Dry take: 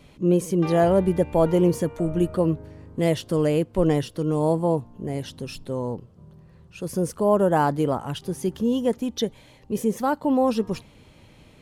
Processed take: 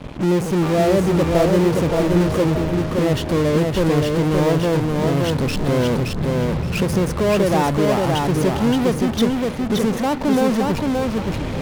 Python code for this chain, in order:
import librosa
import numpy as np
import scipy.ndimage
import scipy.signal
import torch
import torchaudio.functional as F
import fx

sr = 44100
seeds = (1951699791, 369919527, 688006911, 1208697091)

p1 = fx.recorder_agc(x, sr, target_db=-13.0, rise_db_per_s=11.0, max_gain_db=30)
p2 = fx.lowpass(p1, sr, hz=1000.0, slope=6)
p3 = fx.fuzz(p2, sr, gain_db=48.0, gate_db=-52.0)
p4 = p2 + (p3 * librosa.db_to_amplitude(-9.0))
p5 = fx.echo_feedback(p4, sr, ms=572, feedback_pct=24, wet_db=-3)
y = p5 * librosa.db_to_amplitude(-1.5)